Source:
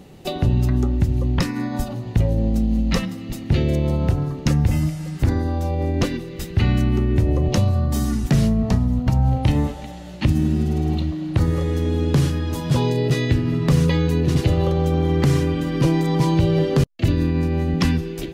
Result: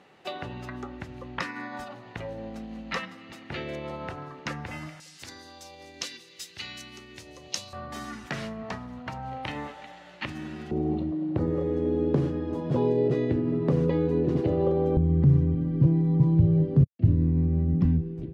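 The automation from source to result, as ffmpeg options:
-af "asetnsamples=n=441:p=0,asendcmd='5 bandpass f 5400;7.73 bandpass f 1600;10.71 bandpass f 410;14.97 bandpass f 120',bandpass=f=1.5k:t=q:w=1.1:csg=0"

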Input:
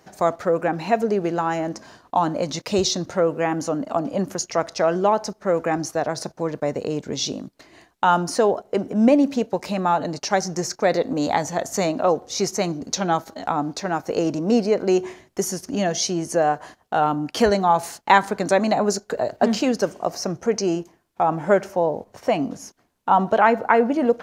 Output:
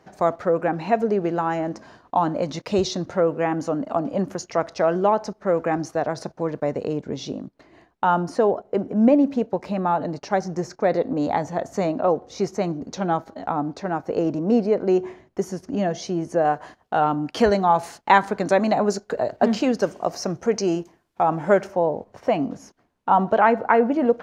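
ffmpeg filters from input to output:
-af "asetnsamples=n=441:p=0,asendcmd='6.93 lowpass f 1200;16.45 lowpass f 3200;19.82 lowpass f 6200;21.67 lowpass f 2300',lowpass=f=2.3k:p=1"

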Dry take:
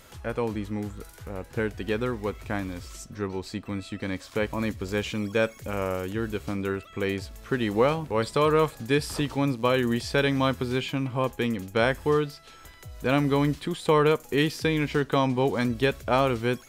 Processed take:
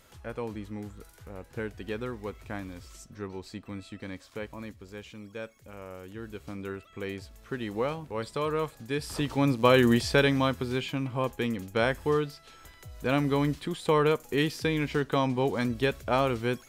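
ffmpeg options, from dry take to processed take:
-af "volume=12dB,afade=t=out:st=3.85:d=1.01:silence=0.398107,afade=t=in:st=5.84:d=0.82:silence=0.446684,afade=t=in:st=8.94:d=0.91:silence=0.251189,afade=t=out:st=9.85:d=0.66:silence=0.446684"

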